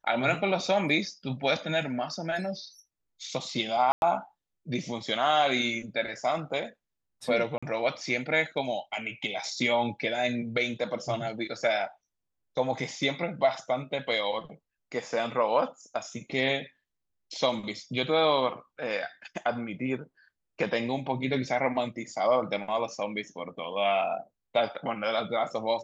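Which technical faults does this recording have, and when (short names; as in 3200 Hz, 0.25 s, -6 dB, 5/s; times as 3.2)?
3.92–4.02 gap 0.101 s
7.58–7.62 gap 45 ms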